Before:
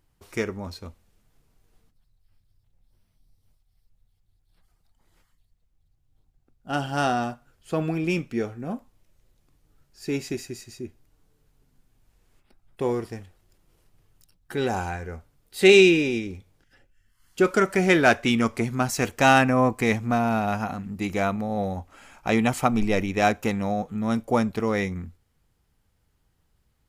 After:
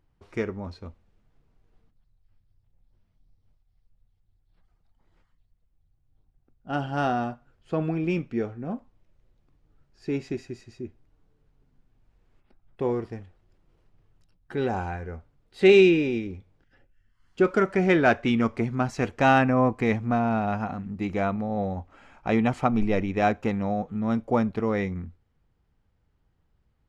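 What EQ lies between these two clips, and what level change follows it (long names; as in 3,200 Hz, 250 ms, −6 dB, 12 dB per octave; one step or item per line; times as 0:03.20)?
head-to-tape spacing loss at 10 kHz 22 dB
0.0 dB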